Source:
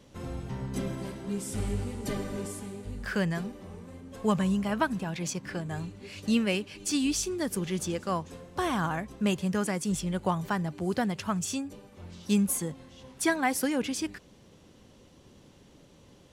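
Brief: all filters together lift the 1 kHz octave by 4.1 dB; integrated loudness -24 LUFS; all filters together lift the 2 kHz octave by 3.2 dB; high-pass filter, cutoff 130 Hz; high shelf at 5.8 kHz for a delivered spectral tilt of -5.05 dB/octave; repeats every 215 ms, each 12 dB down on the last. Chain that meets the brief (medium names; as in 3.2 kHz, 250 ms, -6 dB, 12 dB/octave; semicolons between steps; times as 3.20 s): high-pass 130 Hz; peaking EQ 1 kHz +4.5 dB; peaking EQ 2 kHz +3.5 dB; treble shelf 5.8 kHz -8.5 dB; feedback delay 215 ms, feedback 25%, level -12 dB; trim +6.5 dB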